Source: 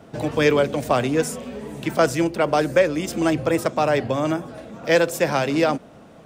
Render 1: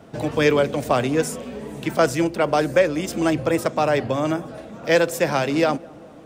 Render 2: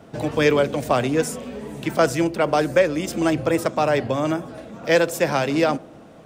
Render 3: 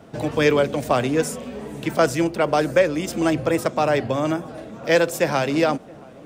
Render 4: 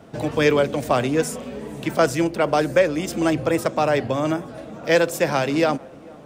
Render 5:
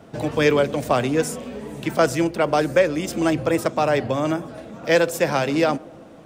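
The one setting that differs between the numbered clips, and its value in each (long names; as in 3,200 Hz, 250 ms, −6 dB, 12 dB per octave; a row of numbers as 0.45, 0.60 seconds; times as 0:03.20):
tape delay, delay time: 208, 74, 675, 448, 129 milliseconds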